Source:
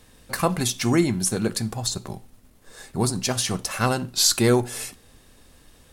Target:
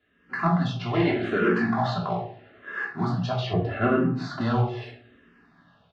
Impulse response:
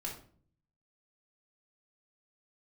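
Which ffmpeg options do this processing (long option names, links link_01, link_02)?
-filter_complex "[0:a]asplit=3[link_01][link_02][link_03];[link_01]afade=type=out:start_time=0.93:duration=0.02[link_04];[link_02]asplit=2[link_05][link_06];[link_06]highpass=frequency=720:poles=1,volume=23dB,asoftclip=type=tanh:threshold=-7.5dB[link_07];[link_05][link_07]amix=inputs=2:normalize=0,lowpass=frequency=1800:poles=1,volume=-6dB,afade=type=in:start_time=0.93:duration=0.02,afade=type=out:start_time=2.84:duration=0.02[link_08];[link_03]afade=type=in:start_time=2.84:duration=0.02[link_09];[link_04][link_08][link_09]amix=inputs=3:normalize=0,asplit=2[link_10][link_11];[link_11]adelay=17,volume=-9.5dB[link_12];[link_10][link_12]amix=inputs=2:normalize=0,acrusher=bits=4:mode=log:mix=0:aa=0.000001,highpass=190,equalizer=frequency=210:width_type=q:width=4:gain=-6,equalizer=frequency=330:width_type=q:width=4:gain=-9,equalizer=frequency=490:width_type=q:width=4:gain=-8,equalizer=frequency=910:width_type=q:width=4:gain=-8,equalizer=frequency=2300:width_type=q:width=4:gain=-9,lowpass=frequency=2800:width=0.5412,lowpass=frequency=2800:width=1.3066[link_13];[1:a]atrim=start_sample=2205[link_14];[link_13][link_14]afir=irnorm=-1:irlink=0,asoftclip=type=tanh:threshold=-13.5dB,dynaudnorm=framelen=110:gausssize=5:maxgain=10dB,asettb=1/sr,asplit=3[link_15][link_16][link_17];[link_15]atrim=end=3.534[link_18];[link_16]atrim=start=3.53:end=4.41,asetpts=PTS-STARTPTS,afade=type=in:duration=0.004:curve=qsin,afade=type=out:start_time=0.876:duration=0.004:curve=qsin,tiltshelf=frequency=1300:gain=9.5[link_19];[link_17]atrim=start=4.406[link_20];[link_18][link_19]acrossfade=duration=0.004:curve1=hsin:curve2=qsin[link_21];[link_21][link_20]acrossfade=duration=0.004:curve1=qsin:curve2=hsin,asplit=2[link_22][link_23];[link_23]afreqshift=-0.79[link_24];[link_22][link_24]amix=inputs=2:normalize=1,volume=-4dB"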